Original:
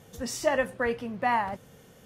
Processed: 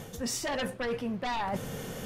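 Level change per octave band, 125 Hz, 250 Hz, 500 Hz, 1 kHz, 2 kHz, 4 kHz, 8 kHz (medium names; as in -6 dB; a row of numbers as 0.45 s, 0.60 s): +4.0 dB, +0.5 dB, -5.5 dB, -6.0 dB, -6.0 dB, +3.5 dB, +2.0 dB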